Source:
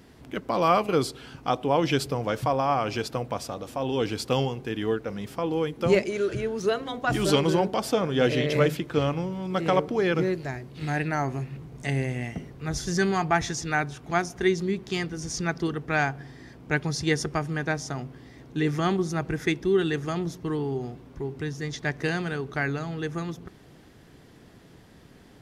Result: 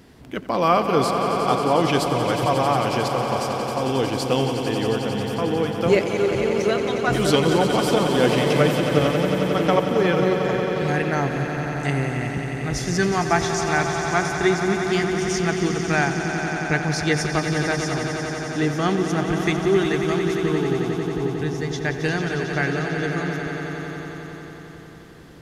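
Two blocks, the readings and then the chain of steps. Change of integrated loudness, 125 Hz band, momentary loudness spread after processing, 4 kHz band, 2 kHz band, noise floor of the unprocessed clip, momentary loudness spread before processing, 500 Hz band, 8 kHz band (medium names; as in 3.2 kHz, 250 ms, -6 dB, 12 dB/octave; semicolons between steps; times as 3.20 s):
+5.5 dB, +5.0 dB, 7 LU, +6.0 dB, +6.0 dB, -52 dBFS, 11 LU, +5.5 dB, +6.0 dB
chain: echo with a slow build-up 90 ms, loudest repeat 5, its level -10 dB; trim +3 dB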